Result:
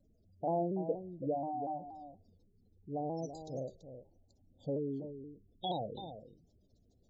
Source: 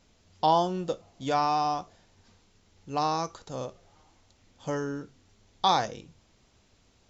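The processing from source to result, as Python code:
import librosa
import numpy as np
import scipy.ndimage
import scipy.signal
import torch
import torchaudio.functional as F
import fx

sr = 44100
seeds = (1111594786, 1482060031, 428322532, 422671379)

p1 = fx.spec_gate(x, sr, threshold_db=-15, keep='strong')
p2 = scipy.signal.sosfilt(scipy.signal.cheby2(4, 50, [1100.0, 2300.0], 'bandstop', fs=sr, output='sos'), p1)
p3 = p2 + fx.echo_single(p2, sr, ms=331, db=-10.5, dry=0)
p4 = fx.vibrato_shape(p3, sr, shape='saw_down', rate_hz=4.2, depth_cents=100.0)
y = F.gain(torch.from_numpy(p4), -4.0).numpy()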